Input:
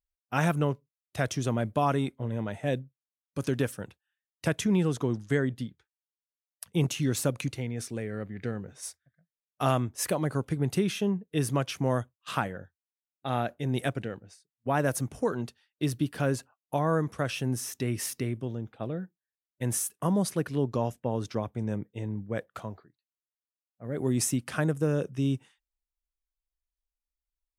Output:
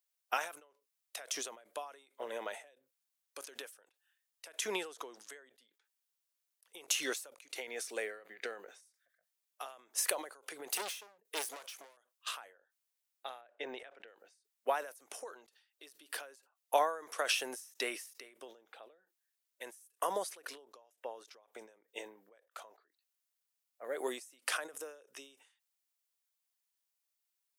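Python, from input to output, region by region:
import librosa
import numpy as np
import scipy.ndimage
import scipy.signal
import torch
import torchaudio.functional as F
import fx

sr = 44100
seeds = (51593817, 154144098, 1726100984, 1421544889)

y = fx.chain(x, sr, fx.highpass(hz=140.0, slope=24),
    fx.high_shelf(hz=5900.0, db=5.0),
    fx.overload_stage(gain_db=34.0), at=(10.67, 11.97))
y = fx.chain(y, sr, fx.lowpass(hz=2600.0, slope=12),
    fx.resample_bad(factor=2, down='none', up='filtered'), at=(13.41, 14.08))
y = scipy.signal.sosfilt(scipy.signal.butter(4, 450.0, 'highpass', fs=sr, output='sos'), y)
y = fx.tilt_eq(y, sr, slope=2.0)
y = fx.end_taper(y, sr, db_per_s=110.0)
y = F.gain(torch.from_numpy(y), 3.5).numpy()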